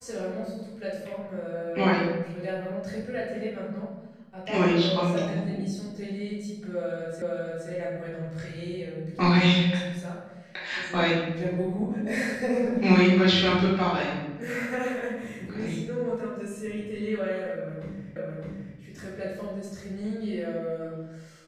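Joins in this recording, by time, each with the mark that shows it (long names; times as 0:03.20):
0:07.22: the same again, the last 0.47 s
0:18.16: the same again, the last 0.61 s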